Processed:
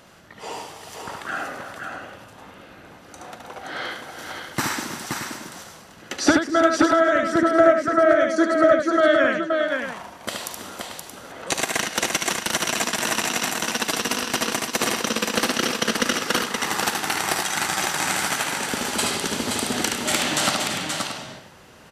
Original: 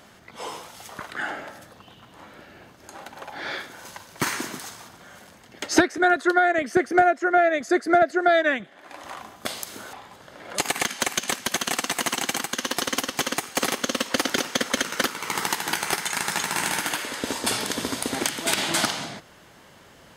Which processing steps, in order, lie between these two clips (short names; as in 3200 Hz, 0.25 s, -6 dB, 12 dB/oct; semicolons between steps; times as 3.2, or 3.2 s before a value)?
varispeed -8%; tapped delay 41/73/323/524/626 ms -17/-4.5/-13.5/-4.5/-10.5 dB